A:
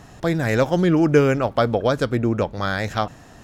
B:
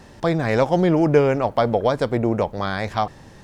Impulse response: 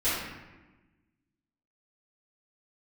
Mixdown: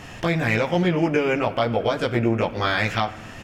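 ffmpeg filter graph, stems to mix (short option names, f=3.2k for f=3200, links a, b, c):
-filter_complex "[0:a]bandreject=f=3.9k:w=7.6,acompressor=threshold=-30dB:ratio=2,volume=2dB,asplit=2[a][b];[b]volume=-18.5dB[c];[1:a]adelay=18,volume=-2dB[d];[2:a]atrim=start_sample=2205[e];[c][e]afir=irnorm=-1:irlink=0[f];[a][d][f]amix=inputs=3:normalize=0,equalizer=f=2.6k:w=1.4:g=11.5,alimiter=limit=-10dB:level=0:latency=1:release=365"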